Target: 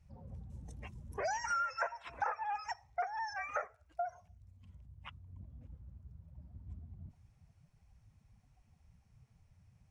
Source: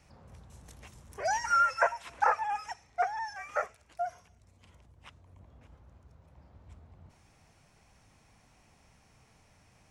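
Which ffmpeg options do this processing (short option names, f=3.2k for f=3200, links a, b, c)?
-af "afftdn=nr=21:nf=-51,acompressor=threshold=-41dB:ratio=4,volume=5dB"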